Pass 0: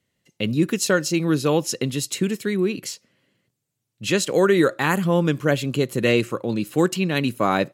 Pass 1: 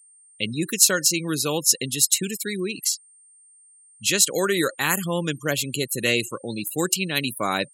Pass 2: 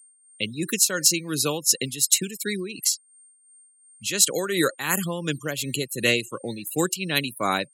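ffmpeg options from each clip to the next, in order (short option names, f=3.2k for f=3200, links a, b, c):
-af "crystalizer=i=6.5:c=0,afftfilt=real='re*gte(hypot(re,im),0.0562)':imag='im*gte(hypot(re,im),0.0562)':win_size=1024:overlap=0.75,aeval=exprs='val(0)+0.00631*sin(2*PI*8700*n/s)':c=same,volume=-7dB"
-filter_complex "[0:a]tremolo=f=2.8:d=0.62,acrossover=split=140|1800[a][b][c];[a]acrusher=samples=15:mix=1:aa=0.000001:lfo=1:lforange=15:lforate=1.1[d];[d][b][c]amix=inputs=3:normalize=0,volume=1.5dB"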